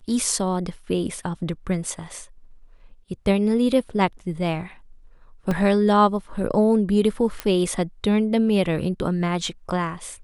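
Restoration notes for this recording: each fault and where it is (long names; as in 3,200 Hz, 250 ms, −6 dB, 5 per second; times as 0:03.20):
0:05.51: drop-out 2.4 ms
0:07.40: click −11 dBFS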